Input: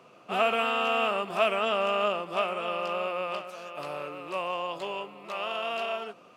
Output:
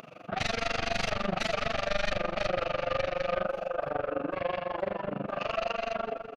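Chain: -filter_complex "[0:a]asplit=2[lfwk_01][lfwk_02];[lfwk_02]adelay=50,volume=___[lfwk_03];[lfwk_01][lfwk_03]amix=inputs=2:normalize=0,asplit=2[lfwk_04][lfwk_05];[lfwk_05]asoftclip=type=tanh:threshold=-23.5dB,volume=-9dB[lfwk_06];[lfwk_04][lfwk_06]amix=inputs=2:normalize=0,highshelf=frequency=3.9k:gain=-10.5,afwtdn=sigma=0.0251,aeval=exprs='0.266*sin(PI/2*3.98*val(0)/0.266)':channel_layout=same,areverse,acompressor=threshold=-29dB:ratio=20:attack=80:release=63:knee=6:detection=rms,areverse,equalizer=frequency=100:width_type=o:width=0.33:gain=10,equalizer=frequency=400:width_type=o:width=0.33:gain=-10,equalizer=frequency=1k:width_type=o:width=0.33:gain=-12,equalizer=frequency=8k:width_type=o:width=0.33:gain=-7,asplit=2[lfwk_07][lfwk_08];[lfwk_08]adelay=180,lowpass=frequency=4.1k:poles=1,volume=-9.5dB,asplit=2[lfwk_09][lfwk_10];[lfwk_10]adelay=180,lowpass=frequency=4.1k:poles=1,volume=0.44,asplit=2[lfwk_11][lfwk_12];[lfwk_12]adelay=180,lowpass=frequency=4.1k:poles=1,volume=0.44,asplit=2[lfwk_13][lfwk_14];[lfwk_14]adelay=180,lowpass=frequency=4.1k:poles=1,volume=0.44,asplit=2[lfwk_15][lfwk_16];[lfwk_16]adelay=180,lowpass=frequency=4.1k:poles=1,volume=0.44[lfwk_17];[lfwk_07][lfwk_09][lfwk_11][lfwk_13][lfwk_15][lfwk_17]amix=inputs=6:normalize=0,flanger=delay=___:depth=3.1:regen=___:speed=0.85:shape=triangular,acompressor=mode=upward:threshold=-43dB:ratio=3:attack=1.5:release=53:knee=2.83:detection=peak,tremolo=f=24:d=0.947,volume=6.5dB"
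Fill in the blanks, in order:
-2.5dB, 4.5, 61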